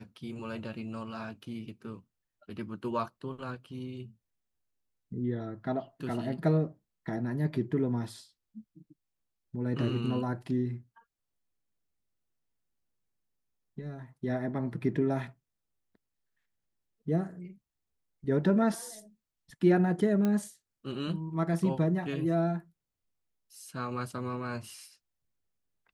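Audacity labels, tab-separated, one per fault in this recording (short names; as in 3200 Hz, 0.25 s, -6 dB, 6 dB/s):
20.250000	20.250000	pop -18 dBFS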